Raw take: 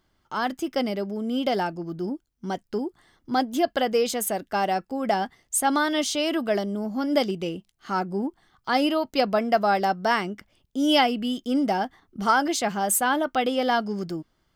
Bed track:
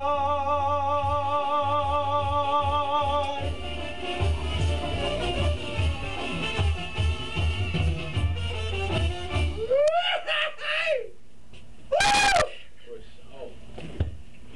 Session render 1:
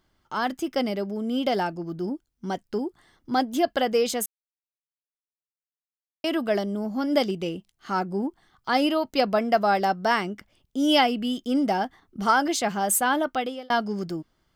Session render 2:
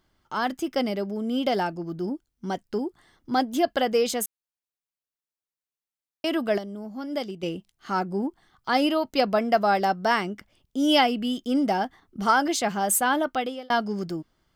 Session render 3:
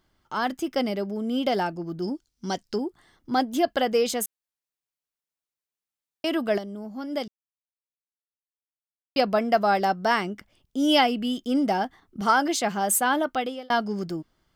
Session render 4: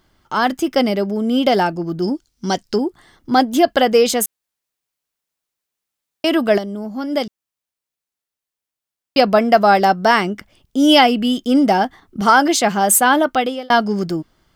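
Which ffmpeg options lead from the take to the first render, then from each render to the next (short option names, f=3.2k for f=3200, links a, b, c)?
-filter_complex "[0:a]asplit=4[a][b][c][d];[a]atrim=end=4.26,asetpts=PTS-STARTPTS,afade=t=out:st=4.256:d=0.004:c=hsin[e];[b]atrim=start=4.26:end=6.24,asetpts=PTS-STARTPTS,volume=0[f];[c]atrim=start=6.24:end=13.7,asetpts=PTS-STARTPTS,afade=t=in:d=0.004:c=hsin,afade=t=out:st=7.02:d=0.44[g];[d]atrim=start=13.7,asetpts=PTS-STARTPTS,afade=t=in:d=0.004:c=hsin[h];[e][f][g][h]concat=n=4:v=0:a=1"
-filter_complex "[0:a]asplit=3[a][b][c];[a]atrim=end=6.582[d];[b]atrim=start=6.578:end=7.432,asetpts=PTS-STARTPTS,volume=-7.5dB[e];[c]atrim=start=7.428[f];[d][e]acrossfade=d=0.004:c1=hsin:c2=hsin[g];[g][f]acrossfade=d=0.004:c1=hsin:c2=hsin"
-filter_complex "[0:a]asettb=1/sr,asplit=3[a][b][c];[a]atrim=end=2.024[d];[b]atrim=start=2.02:end=2.76,asetpts=PTS-STARTPTS,afade=t=in:d=0.004:c=qsin,afade=t=out:st=0.736:d=0.004:c=qsin,equalizer=f=5.2k:w=0.97:g=11.5[e];[c]atrim=start=2.756[f];[d][e]acrossfade=d=0.004:c1=hsin:c2=qsin[g];[g][f]acrossfade=d=0.004:c1=qsin:c2=hsin,asettb=1/sr,asplit=3[h][i][j];[h]atrim=end=12.214[k];[i]atrim=start=12.21:end=13.29,asetpts=PTS-STARTPTS,afade=t=in:d=0.004:c=qsin,afade=t=out:st=1.076:d=0.004:c=qsin,highpass=110[l];[j]atrim=start=13.286[m];[k][l]acrossfade=d=0.004:c1=hsin:c2=qsin[n];[n][m]acrossfade=d=0.004:c1=qsin:c2=hsin,asplit=3[o][p][q];[o]atrim=end=7.28,asetpts=PTS-STARTPTS,afade=t=out:st=7.276:d=0.004:c=hsin[r];[p]atrim=start=7.28:end=9.16,asetpts=PTS-STARTPTS,volume=0[s];[q]atrim=start=9.16,asetpts=PTS-STARTPTS,afade=t=in:d=0.004:c=hsin[t];[r][s][t]concat=n=3:v=0:a=1"
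-af "volume=9.5dB,alimiter=limit=-1dB:level=0:latency=1"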